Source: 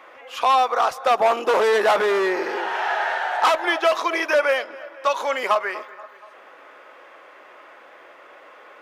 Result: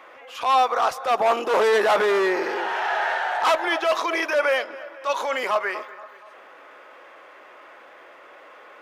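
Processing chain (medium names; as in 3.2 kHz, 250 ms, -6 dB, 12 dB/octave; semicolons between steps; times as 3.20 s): transient shaper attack -8 dB, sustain +1 dB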